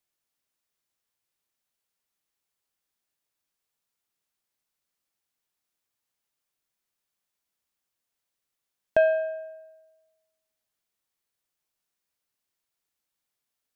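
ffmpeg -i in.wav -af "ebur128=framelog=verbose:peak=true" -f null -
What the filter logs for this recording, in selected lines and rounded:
Integrated loudness:
  I:         -25.2 LUFS
  Threshold: -38.2 LUFS
Loudness range:
  LRA:         6.7 LU
  Threshold: -52.5 LUFS
  LRA low:   -38.2 LUFS
  LRA high:  -31.5 LUFS
True peak:
  Peak:      -10.8 dBFS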